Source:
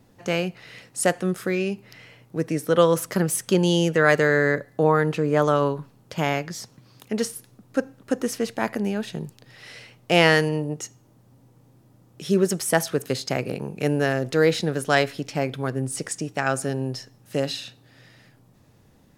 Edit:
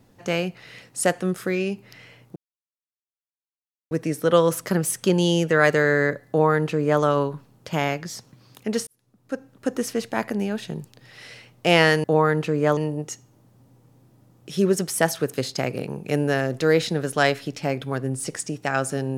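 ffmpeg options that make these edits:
ffmpeg -i in.wav -filter_complex "[0:a]asplit=5[link_01][link_02][link_03][link_04][link_05];[link_01]atrim=end=2.36,asetpts=PTS-STARTPTS,afade=type=out:start_time=2.356:duration=0.004:curve=hsin,apad=pad_dur=1.55[link_06];[link_02]atrim=start=2.36:end=7.32,asetpts=PTS-STARTPTS,afade=type=in:duration=0.004:curve=hsin,afade=type=out:start_time=4.956:duration=0.004:curve=hsin[link_07];[link_03]atrim=start=7.32:end=10.492,asetpts=PTS-STARTPTS,afade=type=in:duration=0.91[link_08];[link_04]atrim=start=4.738:end=5.472[link_09];[link_05]atrim=start=10.488[link_10];[link_06][link_07][link_08]concat=n=3:v=0:a=1[link_11];[link_11][link_09]acrossfade=duration=0.004:curve1=hsin:curve2=hsin[link_12];[link_12][link_10]acrossfade=duration=0.004:curve1=hsin:curve2=hsin" out.wav

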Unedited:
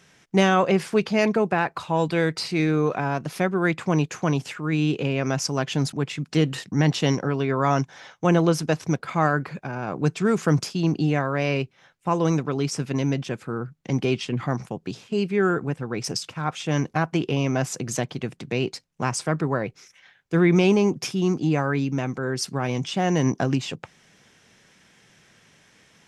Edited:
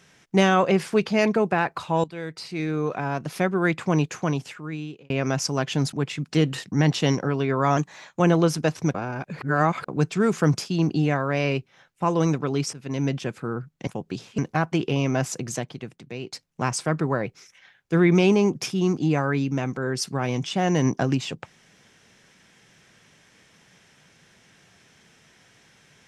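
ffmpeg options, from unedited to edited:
ffmpeg -i in.wav -filter_complex "[0:a]asplit=11[link_01][link_02][link_03][link_04][link_05][link_06][link_07][link_08][link_09][link_10][link_11];[link_01]atrim=end=2.04,asetpts=PTS-STARTPTS,afade=type=out:start_time=2.036:duration=0.004:curve=hsin:silence=0.158489[link_12];[link_02]atrim=start=2.04:end=5.1,asetpts=PTS-STARTPTS,afade=type=in:duration=1.38:silence=0.158489,afade=type=out:start_time=2.05:duration=1.01[link_13];[link_03]atrim=start=5.1:end=7.774,asetpts=PTS-STARTPTS,afade=type=in:duration=0.004:curve=hsin[link_14];[link_04]atrim=start=7.77:end=8.24,asetpts=PTS-STARTPTS,asetrate=48951,aresample=44100[link_15];[link_05]atrim=start=8.236:end=8.992[link_16];[link_06]atrim=start=8.988:end=9.932,asetpts=PTS-STARTPTS,areverse[link_17];[link_07]atrim=start=9.928:end=12.78,asetpts=PTS-STARTPTS,afade=type=out:start_time=2.848:duration=0.004:curve=hsin:silence=0.133352[link_18];[link_08]atrim=start=12.78:end=13.922,asetpts=PTS-STARTPTS,afade=type=in:duration=0.35:silence=0.133352[link_19];[link_09]atrim=start=14.628:end=15.142[link_20];[link_10]atrim=start=16.788:end=18.73,asetpts=PTS-STARTPTS,afade=type=out:start_time=0.932:duration=1.01:curve=qua:silence=0.316228[link_21];[link_11]atrim=start=18.73,asetpts=PTS-STARTPTS,afade=type=in:duration=0.004:curve=hsin:silence=0.316228[link_22];[link_12][link_13][link_14]concat=n=3:v=0:a=1[link_23];[link_23][link_15]acrossfade=duration=0.004:curve1=hsin:curve2=hsin[link_24];[link_24][link_16]acrossfade=duration=0.004:curve1=hsin:curve2=hsin[link_25];[link_25][link_17]acrossfade=duration=0.004:curve1=hsin:curve2=hsin[link_26];[link_18][link_19]concat=n=2:v=0:a=1[link_27];[link_26][link_27]acrossfade=duration=0.004:curve1=hsin:curve2=hsin[link_28];[link_28][link_20]acrossfade=duration=0.004:curve1=hsin:curve2=hsin[link_29];[link_21][link_22]concat=n=2:v=0:a=1[link_30];[link_29][link_30]acrossfade=duration=0.004:curve1=hsin:curve2=hsin" out.wav

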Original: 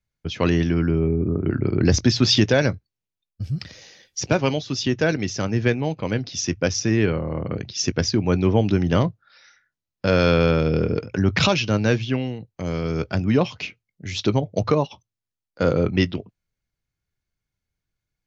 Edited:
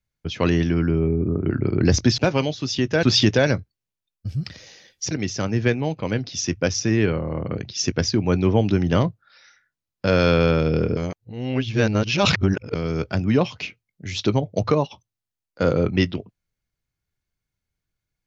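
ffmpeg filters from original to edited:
ffmpeg -i in.wav -filter_complex "[0:a]asplit=6[link_01][link_02][link_03][link_04][link_05][link_06];[link_01]atrim=end=2.182[link_07];[link_02]atrim=start=4.258:end=5.112[link_08];[link_03]atrim=start=2.178:end=4.262[link_09];[link_04]atrim=start=5.108:end=10.972[link_10];[link_05]atrim=start=10.968:end=12.752,asetpts=PTS-STARTPTS,areverse[link_11];[link_06]atrim=start=12.748[link_12];[link_07][link_08]acrossfade=duration=0.004:curve1=hsin:curve2=hsin[link_13];[link_13][link_09]acrossfade=duration=0.004:curve1=hsin:curve2=hsin[link_14];[link_14][link_10]acrossfade=duration=0.004:curve1=hsin:curve2=hsin[link_15];[link_15][link_11]acrossfade=duration=0.004:curve1=hsin:curve2=hsin[link_16];[link_16][link_12]acrossfade=duration=0.004:curve1=hsin:curve2=hsin" out.wav

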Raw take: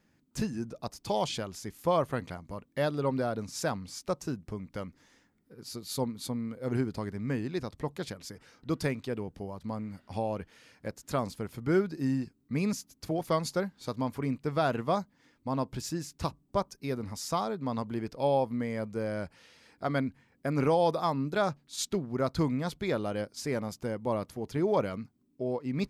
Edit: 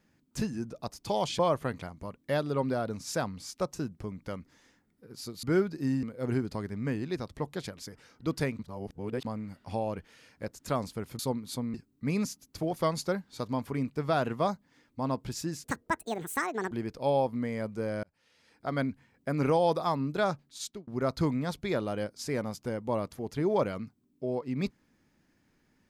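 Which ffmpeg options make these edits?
ffmpeg -i in.wav -filter_complex "[0:a]asplit=12[link_01][link_02][link_03][link_04][link_05][link_06][link_07][link_08][link_09][link_10][link_11][link_12];[link_01]atrim=end=1.392[link_13];[link_02]atrim=start=1.868:end=5.912[link_14];[link_03]atrim=start=11.618:end=12.222[link_15];[link_04]atrim=start=6.458:end=9.022[link_16];[link_05]atrim=start=9.018:end=9.682,asetpts=PTS-STARTPTS,areverse[link_17];[link_06]atrim=start=9.678:end=11.622[link_18];[link_07]atrim=start=5.908:end=6.462[link_19];[link_08]atrim=start=12.218:end=16.124[link_20];[link_09]atrim=start=16.12:end=17.89,asetpts=PTS-STARTPTS,asetrate=72765,aresample=44100,atrim=end_sample=47307,asetpts=PTS-STARTPTS[link_21];[link_10]atrim=start=17.886:end=19.21,asetpts=PTS-STARTPTS,afade=type=out:start_time=1.32:duration=0.004:curve=hsin[link_22];[link_11]atrim=start=19.21:end=22.05,asetpts=PTS-STARTPTS,afade=type=in:duration=0.82,afade=type=out:start_time=2.2:duration=0.64:curve=qsin[link_23];[link_12]atrim=start=22.05,asetpts=PTS-STARTPTS,afade=type=in:duration=0.004:curve=hsin[link_24];[link_13][link_14]acrossfade=duration=0.004:curve1=hsin:curve2=hsin[link_25];[link_25][link_15]acrossfade=duration=0.004:curve1=hsin:curve2=hsin[link_26];[link_26][link_16]acrossfade=duration=0.004:curve1=hsin:curve2=hsin[link_27];[link_27][link_17]acrossfade=duration=0.004:curve1=hsin:curve2=hsin[link_28];[link_28][link_18]acrossfade=duration=0.004:curve1=hsin:curve2=hsin[link_29];[link_29][link_19]acrossfade=duration=0.004:curve1=hsin:curve2=hsin[link_30];[link_30][link_20]acrossfade=duration=0.004:curve1=hsin:curve2=hsin[link_31];[link_31][link_21]acrossfade=duration=0.004:curve1=hsin:curve2=hsin[link_32];[link_22][link_23][link_24]concat=n=3:v=0:a=1[link_33];[link_32][link_33]acrossfade=duration=0.004:curve1=hsin:curve2=hsin" out.wav

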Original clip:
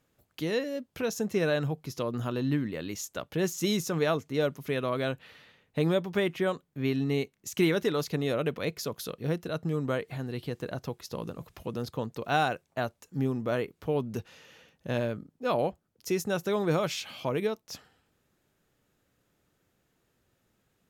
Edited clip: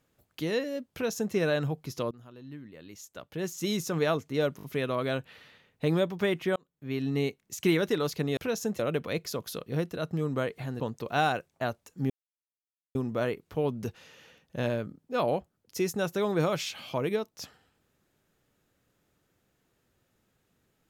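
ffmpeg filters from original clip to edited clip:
ffmpeg -i in.wav -filter_complex "[0:a]asplit=10[link_01][link_02][link_03][link_04][link_05][link_06][link_07][link_08][link_09][link_10];[link_01]atrim=end=2.11,asetpts=PTS-STARTPTS,afade=type=out:start_time=2.106:duration=0.004:curve=hsin:silence=0.112202[link_11];[link_02]atrim=start=2.11:end=4.592,asetpts=PTS-STARTPTS,afade=type=in:duration=1.85:curve=qua:silence=0.112202[link_12];[link_03]atrim=start=4.568:end=4.592[link_13];[link_04]atrim=start=4.568:end=4.592[link_14];[link_05]atrim=start=4.568:end=6.5,asetpts=PTS-STARTPTS,afade=type=out:start_time=1.928:duration=0.004:curve=hsin[link_15];[link_06]atrim=start=6.5:end=8.312,asetpts=PTS-STARTPTS,afade=type=in:duration=0.6[link_16];[link_07]atrim=start=0.918:end=1.342[link_17];[link_08]atrim=start=8.308:end=10.322[link_18];[link_09]atrim=start=11.958:end=13.26,asetpts=PTS-STARTPTS,afade=type=out:start_time=1.298:duration=0.004:curve=hsin,apad=pad_dur=0.85[link_19];[link_10]atrim=start=13.26,asetpts=PTS-STARTPTS,afade=type=in:duration=0.004:curve=hsin[link_20];[link_11][link_12]concat=n=2:v=0:a=1[link_21];[link_21][link_13]acrossfade=duration=0.004:curve1=hsin:curve2=hsin[link_22];[link_22][link_14]acrossfade=duration=0.004:curve1=hsin:curve2=hsin[link_23];[link_15][link_16]concat=n=2:v=0:a=1[link_24];[link_23][link_24]acrossfade=duration=0.004:curve1=hsin:curve2=hsin[link_25];[link_25][link_17]acrossfade=duration=0.004:curve1=hsin:curve2=hsin[link_26];[link_26][link_18]acrossfade=duration=0.004:curve1=hsin:curve2=hsin[link_27];[link_19][link_20]concat=n=2:v=0:a=1[link_28];[link_27][link_28]acrossfade=duration=0.004:curve1=hsin:curve2=hsin" out.wav

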